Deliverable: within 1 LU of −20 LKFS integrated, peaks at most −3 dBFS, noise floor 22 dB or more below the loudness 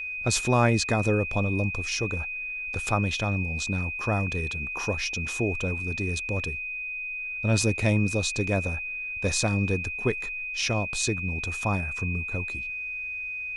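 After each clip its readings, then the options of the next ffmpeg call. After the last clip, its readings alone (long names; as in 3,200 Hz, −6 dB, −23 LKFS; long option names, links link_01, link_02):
interfering tone 2,500 Hz; level of the tone −31 dBFS; integrated loudness −27.0 LKFS; sample peak −7.5 dBFS; target loudness −20.0 LKFS
→ -af "bandreject=frequency=2500:width=30"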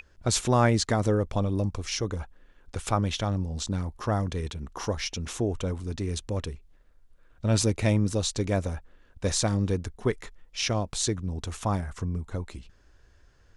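interfering tone none found; integrated loudness −28.5 LKFS; sample peak −8.0 dBFS; target loudness −20.0 LKFS
→ -af "volume=8.5dB,alimiter=limit=-3dB:level=0:latency=1"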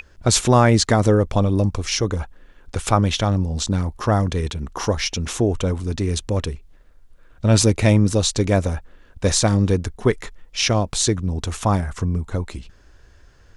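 integrated loudness −20.0 LKFS; sample peak −3.0 dBFS; background noise floor −50 dBFS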